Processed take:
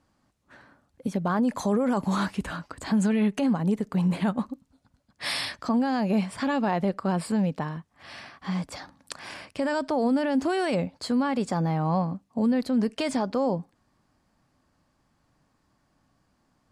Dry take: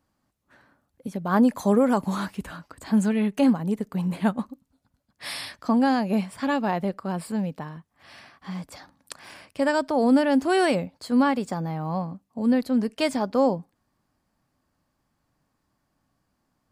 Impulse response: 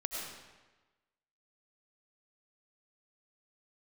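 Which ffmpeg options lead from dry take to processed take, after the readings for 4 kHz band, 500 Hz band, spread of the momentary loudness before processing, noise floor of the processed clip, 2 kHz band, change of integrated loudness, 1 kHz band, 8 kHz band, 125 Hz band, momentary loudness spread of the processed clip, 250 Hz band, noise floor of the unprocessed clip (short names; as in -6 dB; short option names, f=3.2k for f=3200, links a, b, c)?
+0.5 dB, -3.0 dB, 18 LU, -71 dBFS, -2.0 dB, -2.5 dB, -2.5 dB, 0.0 dB, +2.0 dB, 13 LU, -2.0 dB, -75 dBFS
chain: -filter_complex "[0:a]lowpass=9.1k,asplit=2[a][b];[b]acompressor=threshold=-28dB:ratio=6,volume=-2.5dB[c];[a][c]amix=inputs=2:normalize=0,alimiter=limit=-17dB:level=0:latency=1:release=31"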